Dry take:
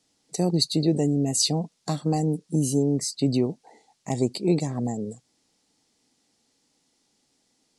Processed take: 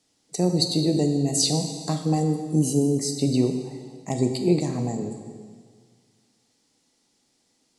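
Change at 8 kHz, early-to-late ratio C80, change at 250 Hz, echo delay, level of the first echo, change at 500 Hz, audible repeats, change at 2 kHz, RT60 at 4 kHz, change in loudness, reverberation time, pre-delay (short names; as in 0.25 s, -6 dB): +1.0 dB, 8.0 dB, +1.5 dB, none, none, +1.5 dB, none, +1.0 dB, 1.6 s, +1.5 dB, 1.7 s, 15 ms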